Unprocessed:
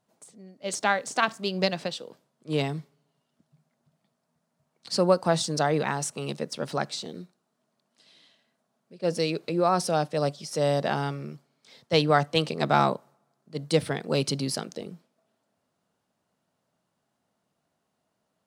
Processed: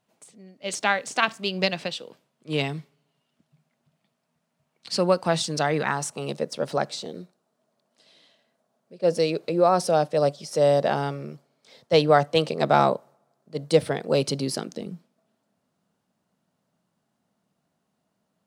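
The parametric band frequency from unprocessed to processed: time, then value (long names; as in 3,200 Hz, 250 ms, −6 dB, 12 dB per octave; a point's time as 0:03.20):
parametric band +6.5 dB 0.95 octaves
0:05.62 2,600 Hz
0:06.31 560 Hz
0:14.32 560 Hz
0:14.87 190 Hz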